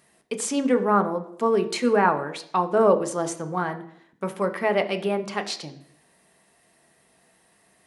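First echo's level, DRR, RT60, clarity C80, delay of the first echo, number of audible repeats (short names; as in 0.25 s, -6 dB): none, 6.5 dB, 0.65 s, 16.5 dB, none, none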